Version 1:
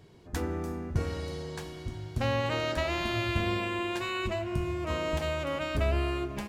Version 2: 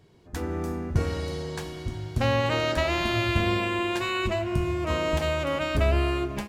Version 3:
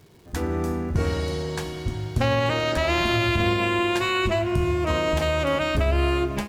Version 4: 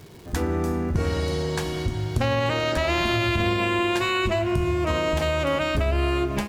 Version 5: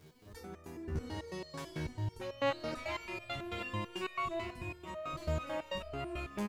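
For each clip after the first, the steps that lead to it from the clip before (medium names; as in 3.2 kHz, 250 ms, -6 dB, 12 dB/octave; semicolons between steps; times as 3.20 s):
level rider gain up to 7.5 dB; trim -2.5 dB
peak limiter -17 dBFS, peak gain reduction 6.5 dB; crackle 420 per s -51 dBFS; trim +4.5 dB
compression 2:1, threshold -34 dBFS, peak gain reduction 9 dB; trim +7.5 dB
speakerphone echo 190 ms, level -7 dB; resonator arpeggio 9.1 Hz 77–610 Hz; trim -4.5 dB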